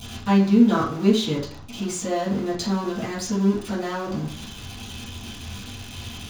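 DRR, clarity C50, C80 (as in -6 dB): -6.5 dB, 5.5 dB, 11.0 dB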